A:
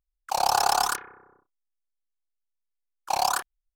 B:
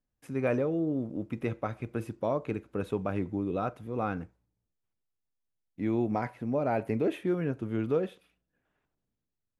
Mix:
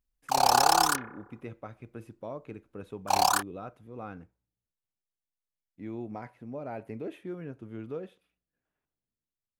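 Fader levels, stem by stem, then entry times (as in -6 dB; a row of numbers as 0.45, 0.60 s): +0.5, -9.5 dB; 0.00, 0.00 s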